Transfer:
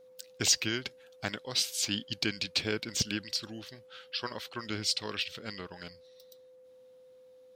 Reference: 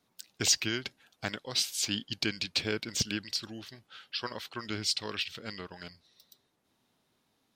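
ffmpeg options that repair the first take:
ffmpeg -i in.wav -af "bandreject=frequency=510:width=30" out.wav

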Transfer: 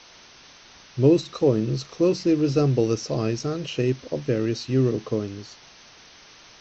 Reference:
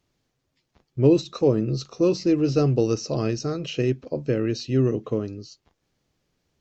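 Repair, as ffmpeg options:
ffmpeg -i in.wav -af "afwtdn=0.0063" out.wav

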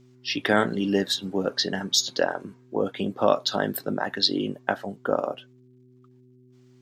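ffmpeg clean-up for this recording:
ffmpeg -i in.wav -af "bandreject=frequency=125.8:width_type=h:width=4,bandreject=frequency=251.6:width_type=h:width=4,bandreject=frequency=377.4:width_type=h:width=4" out.wav

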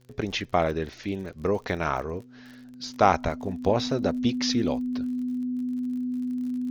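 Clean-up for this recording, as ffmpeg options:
ffmpeg -i in.wav -af "adeclick=threshold=4,bandreject=frequency=125.2:width_type=h:width=4,bandreject=frequency=250.4:width_type=h:width=4,bandreject=frequency=375.6:width_type=h:width=4,bandreject=frequency=500.8:width_type=h:width=4,bandreject=frequency=250:width=30" out.wav

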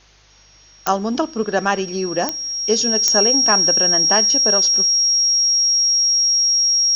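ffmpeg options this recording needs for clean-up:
ffmpeg -i in.wav -af "adeclick=threshold=4,bandreject=frequency=50.6:width_type=h:width=4,bandreject=frequency=101.2:width_type=h:width=4,bandreject=frequency=151.8:width_type=h:width=4,bandreject=frequency=5600:width=30,agate=range=-21dB:threshold=-40dB" out.wav

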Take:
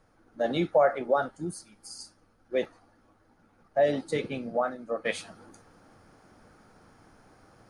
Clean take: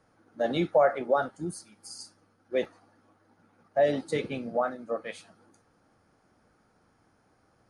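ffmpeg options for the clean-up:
ffmpeg -i in.wav -af "agate=range=-21dB:threshold=-56dB,asetnsamples=nb_out_samples=441:pad=0,asendcmd='5.05 volume volume -9dB',volume=0dB" out.wav

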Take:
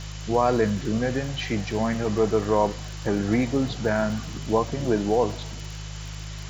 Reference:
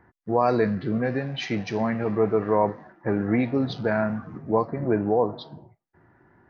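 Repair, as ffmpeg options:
ffmpeg -i in.wav -af "adeclick=threshold=4,bandreject=frequency=51.9:width_type=h:width=4,bandreject=frequency=103.8:width_type=h:width=4,bandreject=frequency=155.7:width_type=h:width=4,bandreject=frequency=3000:width=30,afftdn=noise_reduction=23:noise_floor=-35" out.wav

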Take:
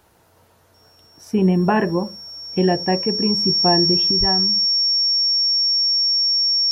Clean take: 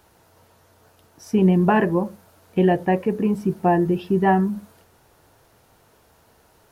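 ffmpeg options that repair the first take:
ffmpeg -i in.wav -filter_complex "[0:a]bandreject=frequency=5500:width=30,asplit=3[link_01][link_02][link_03];[link_01]afade=type=out:start_time=4.19:duration=0.02[link_04];[link_02]highpass=frequency=140:width=0.5412,highpass=frequency=140:width=1.3066,afade=type=in:start_time=4.19:duration=0.02,afade=type=out:start_time=4.31:duration=0.02[link_05];[link_03]afade=type=in:start_time=4.31:duration=0.02[link_06];[link_04][link_05][link_06]amix=inputs=3:normalize=0,asetnsamples=nb_out_samples=441:pad=0,asendcmd='4.11 volume volume 7dB',volume=0dB" out.wav

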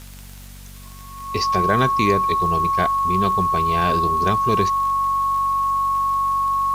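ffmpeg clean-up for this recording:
ffmpeg -i in.wav -af "adeclick=threshold=4,bandreject=frequency=47.5:width_type=h:width=4,bandreject=frequency=95:width_type=h:width=4,bandreject=frequency=142.5:width_type=h:width=4,bandreject=frequency=190:width_type=h:width=4,bandreject=frequency=237.5:width_type=h:width=4,bandreject=frequency=1100:width=30,afwtdn=0.0056" out.wav

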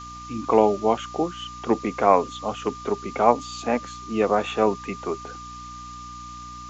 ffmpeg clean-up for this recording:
ffmpeg -i in.wav -af "bandreject=frequency=60.4:width_type=h:width=4,bandreject=frequency=120.8:width_type=h:width=4,bandreject=frequency=181.2:width_type=h:width=4,bandreject=frequency=241.6:width_type=h:width=4,bandreject=frequency=302:width_type=h:width=4,bandreject=frequency=1200:width=30,afftdn=noise_reduction=28:noise_floor=-39" out.wav

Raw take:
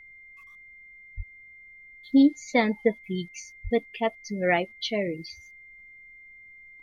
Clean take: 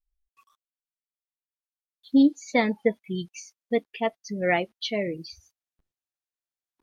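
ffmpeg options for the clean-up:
ffmpeg -i in.wav -filter_complex "[0:a]bandreject=frequency=2100:width=30,asplit=3[link_01][link_02][link_03];[link_01]afade=type=out:start_time=1.16:duration=0.02[link_04];[link_02]highpass=frequency=140:width=0.5412,highpass=frequency=140:width=1.3066,afade=type=in:start_time=1.16:duration=0.02,afade=type=out:start_time=1.28:duration=0.02[link_05];[link_03]afade=type=in:start_time=1.28:duration=0.02[link_06];[link_04][link_05][link_06]amix=inputs=3:normalize=0,asplit=3[link_07][link_08][link_09];[link_07]afade=type=out:start_time=3.63:duration=0.02[link_10];[link_08]highpass=frequency=140:width=0.5412,highpass=frequency=140:width=1.3066,afade=type=in:start_time=3.63:duration=0.02,afade=type=out:start_time=3.75:duration=0.02[link_11];[link_09]afade=type=in:start_time=3.75:duration=0.02[link_12];[link_10][link_11][link_12]amix=inputs=3:normalize=0,agate=range=-21dB:threshold=-42dB" out.wav

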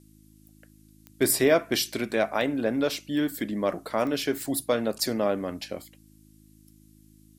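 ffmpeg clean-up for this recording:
ffmpeg -i in.wav -af "adeclick=threshold=4,bandreject=frequency=52.8:width_type=h:width=4,bandreject=frequency=105.6:width_type=h:width=4,bandreject=frequency=158.4:width_type=h:width=4,bandreject=frequency=211.2:width_type=h:width=4,bandreject=frequency=264:width_type=h:width=4,bandreject=frequency=316.8:width_type=h:width=4,agate=range=-21dB:threshold=-48dB" out.wav

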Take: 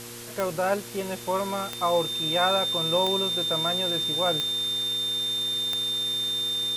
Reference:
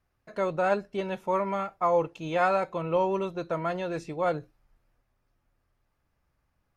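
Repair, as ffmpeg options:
ffmpeg -i in.wav -af "adeclick=threshold=4,bandreject=frequency=118.6:width_type=h:width=4,bandreject=frequency=237.2:width_type=h:width=4,bandreject=frequency=355.8:width_type=h:width=4,bandreject=frequency=474.4:width_type=h:width=4,bandreject=frequency=3600:width=30,afftdn=noise_reduction=30:noise_floor=-36" out.wav

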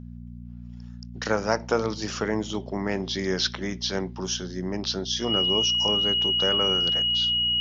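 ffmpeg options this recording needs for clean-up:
ffmpeg -i in.wav -af "bandreject=frequency=59.6:width_type=h:width=4,bandreject=frequency=119.2:width_type=h:width=4,bandreject=frequency=178.8:width_type=h:width=4,bandreject=frequency=238.4:width_type=h:width=4,bandreject=frequency=2900:width=30" out.wav

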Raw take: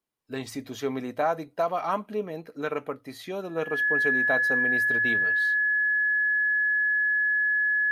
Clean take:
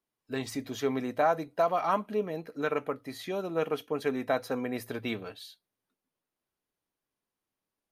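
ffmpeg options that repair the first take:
ffmpeg -i in.wav -af "bandreject=frequency=1700:width=30" out.wav

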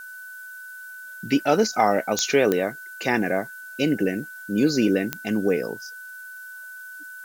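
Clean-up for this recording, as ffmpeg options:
ffmpeg -i in.wav -af "adeclick=threshold=4,bandreject=frequency=1500:width=30,afftdn=noise_reduction=29:noise_floor=-40" out.wav

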